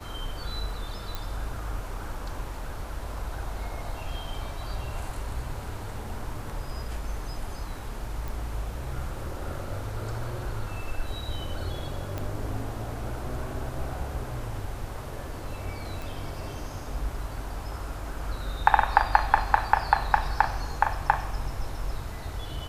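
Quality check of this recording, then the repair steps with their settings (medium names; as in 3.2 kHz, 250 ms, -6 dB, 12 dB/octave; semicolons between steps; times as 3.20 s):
1.15 s: pop
8.28 s: pop
12.18 s: pop -18 dBFS
16.02 s: pop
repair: de-click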